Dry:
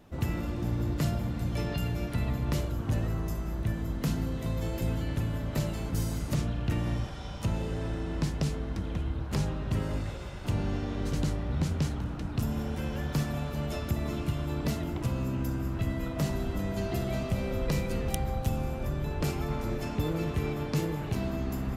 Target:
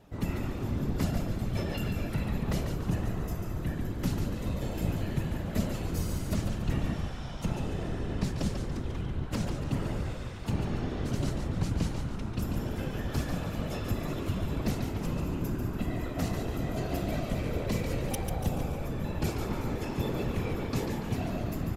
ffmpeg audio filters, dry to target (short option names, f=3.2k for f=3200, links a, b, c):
-filter_complex "[0:a]afftfilt=real='hypot(re,im)*cos(2*PI*random(0))':imag='hypot(re,im)*sin(2*PI*random(1))':win_size=512:overlap=0.75,asplit=6[a][b][c][d][e][f];[b]adelay=143,afreqshift=-75,volume=-6.5dB[g];[c]adelay=286,afreqshift=-150,volume=-13.4dB[h];[d]adelay=429,afreqshift=-225,volume=-20.4dB[i];[e]adelay=572,afreqshift=-300,volume=-27.3dB[j];[f]adelay=715,afreqshift=-375,volume=-34.2dB[k];[a][g][h][i][j][k]amix=inputs=6:normalize=0,volume=4.5dB"